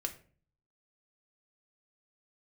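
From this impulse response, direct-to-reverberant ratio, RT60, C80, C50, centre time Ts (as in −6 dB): 3.5 dB, 0.45 s, 17.5 dB, 13.0 dB, 8 ms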